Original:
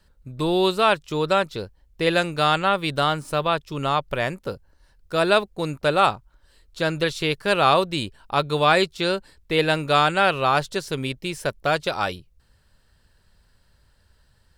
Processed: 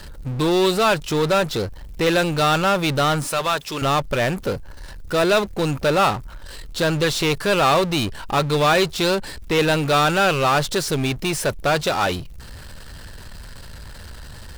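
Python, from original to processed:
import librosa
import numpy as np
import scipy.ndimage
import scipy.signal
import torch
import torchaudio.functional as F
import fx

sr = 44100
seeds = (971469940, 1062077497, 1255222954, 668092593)

y = fx.highpass(x, sr, hz=1000.0, slope=6, at=(3.27, 3.82))
y = fx.power_curve(y, sr, exponent=0.5)
y = y * 10.0 ** (-4.0 / 20.0)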